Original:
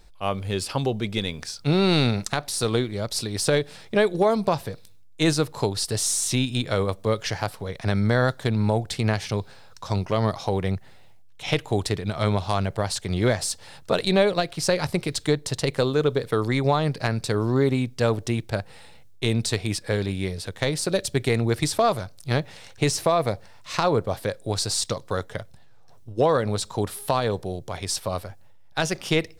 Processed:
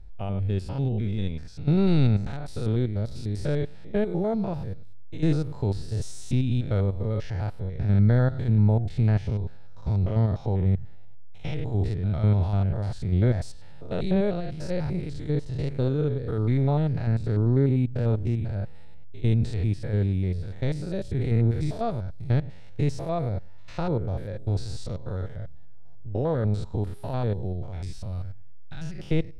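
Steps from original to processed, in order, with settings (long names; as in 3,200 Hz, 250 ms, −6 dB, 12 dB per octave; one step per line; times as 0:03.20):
spectrum averaged block by block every 100 ms
RIAA equalisation playback
notch filter 1,100 Hz, Q 6
0:27.83–0:28.98: parametric band 540 Hz −7.5 dB → −14.5 dB 2.2 octaves
level −7.5 dB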